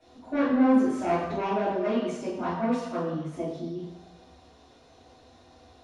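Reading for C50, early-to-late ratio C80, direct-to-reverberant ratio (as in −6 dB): 1.0 dB, 4.5 dB, −10.5 dB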